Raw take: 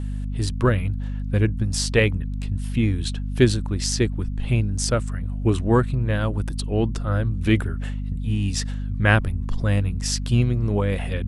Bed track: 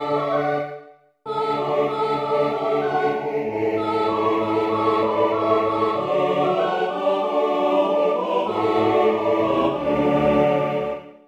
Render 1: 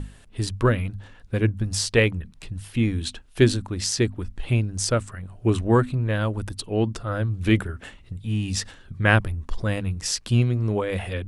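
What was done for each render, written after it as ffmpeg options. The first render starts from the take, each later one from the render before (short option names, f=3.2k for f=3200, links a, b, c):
-af "bandreject=f=50:t=h:w=6,bandreject=f=100:t=h:w=6,bandreject=f=150:t=h:w=6,bandreject=f=200:t=h:w=6,bandreject=f=250:t=h:w=6"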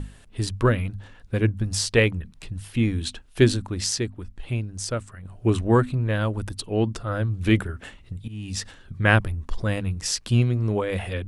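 -filter_complex "[0:a]asplit=4[a][b][c][d];[a]atrim=end=3.982[e];[b]atrim=start=3.978:end=5.252,asetpts=PTS-STARTPTS,volume=-5.5dB[f];[c]atrim=start=5.248:end=8.28,asetpts=PTS-STARTPTS,afade=t=out:st=3.028:d=0.004:c=hsin:silence=0.141254[g];[d]atrim=start=8.28,asetpts=PTS-STARTPTS,afade=t=in:d=0.66:c=qsin:silence=0.141254[h];[e][f]acrossfade=d=0.004:c1=hsin:c2=hsin[i];[g][h]concat=n=2:v=0:a=1[j];[i][j]acrossfade=d=0.004:c1=hsin:c2=hsin"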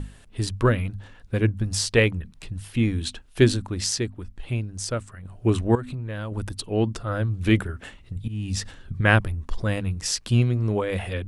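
-filter_complex "[0:a]asettb=1/sr,asplit=3[a][b][c];[a]atrim=end=5.754[d];[b]atrim=start=5.75:end=6.32,asetpts=PTS-STARTPTS,afade=t=in:d=0.004:c=qsin,afade=t=out:st=0.566:d=0.004:c=qsin,acompressor=threshold=-28dB:ratio=6:attack=3.2:release=140:knee=1:detection=peak[e];[c]atrim=start=6.316[f];[d][e]acrossfade=d=0.004:c1=hsin:c2=qsin[g];[g][f]acrossfade=d=0.004:c1=qsin:c2=hsin,asettb=1/sr,asplit=3[h][i][j];[h]atrim=end=8.164[k];[i]atrim=start=8.16:end=9.01,asetpts=PTS-STARTPTS,afade=t=in:d=0.004:c=qsin,afade=t=out:st=0.846:d=0.004:c=qsin,lowshelf=f=250:g=6[l];[j]atrim=start=9.006[m];[k][l]acrossfade=d=0.004:c1=hsin:c2=qsin[n];[n][m]acrossfade=d=0.004:c1=qsin:c2=hsin"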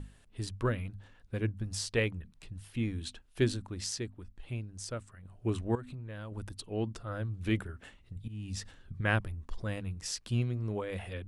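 -af "volume=-11dB"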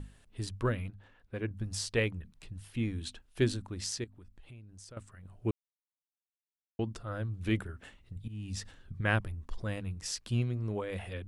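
-filter_complex "[0:a]asettb=1/sr,asplit=3[a][b][c];[a]atrim=end=0.904[d];[b]atrim=start=0.9:end=1.51,asetpts=PTS-STARTPTS,afade=t=in:d=0.004:c=qsin,afade=t=out:st=0.606:d=0.004:c=qsin,bass=f=250:g=-6,treble=f=4k:g=-10[e];[c]atrim=start=1.506[f];[d][e]acrossfade=d=0.004:c1=hsin:c2=qsin[g];[g][f]acrossfade=d=0.004:c1=qsin:c2=hsin,asettb=1/sr,asplit=3[h][i][j];[h]atrim=end=4.044[k];[i]atrim=start=4.04:end=4.97,asetpts=PTS-STARTPTS,afade=t=in:d=0.004:c=qsin,afade=t=out:st=0.926:d=0.004:c=qsin,acompressor=threshold=-51dB:ratio=3:attack=3.2:release=140:knee=1:detection=peak[l];[j]atrim=start=4.966[m];[k][l]acrossfade=d=0.004:c1=hsin:c2=qsin[n];[n][m]acrossfade=d=0.004:c1=qsin:c2=hsin,asplit=3[o][p][q];[o]atrim=end=5.51,asetpts=PTS-STARTPTS,afade=t=out:st=5.506:d=0.004:c=hsin[r];[p]atrim=start=5.51:end=6.79,asetpts=PTS-STARTPTS,volume=0[s];[q]atrim=start=6.79,asetpts=PTS-STARTPTS,afade=t=in:d=0.004:c=hsin[t];[r][s][t]concat=n=3:v=0:a=1"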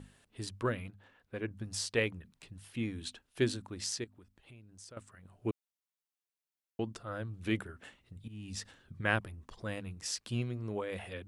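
-af "highpass=f=190:p=1"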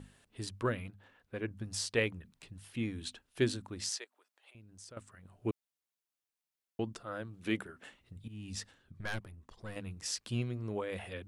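-filter_complex "[0:a]asettb=1/sr,asplit=3[a][b][c];[a]atrim=end=3.894[d];[b]atrim=start=3.89:end=4.55,asetpts=PTS-STARTPTS,afade=t=in:d=0.004:c=qsin,afade=t=out:st=0.656:d=0.004:c=qsin,highpass=f=540:w=0.5412,highpass=f=540:w=1.3066[e];[c]atrim=start=4.546[f];[d][e]acrossfade=d=0.004:c1=hsin:c2=qsin[g];[g][f]acrossfade=d=0.004:c1=qsin:c2=hsin,asettb=1/sr,asplit=3[h][i][j];[h]atrim=end=6.934[k];[i]atrim=start=6.93:end=8.01,asetpts=PTS-STARTPTS,afade=t=in:d=0.004:c=qsin,afade=t=out:st=1.076:d=0.004:c=qsin,equalizer=f=83:w=1.5:g=-12[l];[j]atrim=start=8.006[m];[k][l]acrossfade=d=0.004:c1=hsin:c2=qsin[n];[n][m]acrossfade=d=0.004:c1=qsin:c2=hsin,asettb=1/sr,asplit=3[o][p][q];[o]atrim=end=8.654[r];[p]atrim=start=8.65:end=9.76,asetpts=PTS-STARTPTS,afade=t=in:d=0.004:c=qsin,afade=t=out:st=1.106:d=0.004:c=qsin,aeval=exprs='(tanh(39.8*val(0)+0.8)-tanh(0.8))/39.8':c=same[s];[q]atrim=start=9.756[t];[r][s]acrossfade=d=0.004:c1=hsin:c2=qsin[u];[u][t]acrossfade=d=0.004:c1=qsin:c2=hsin"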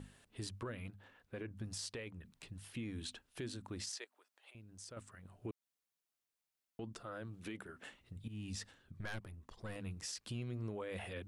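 -af "acompressor=threshold=-37dB:ratio=5,alimiter=level_in=10.5dB:limit=-24dB:level=0:latency=1:release=13,volume=-10.5dB"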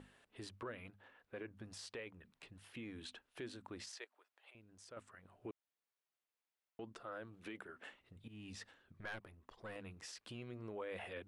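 -af "bass=f=250:g=-11,treble=f=4k:g=-10"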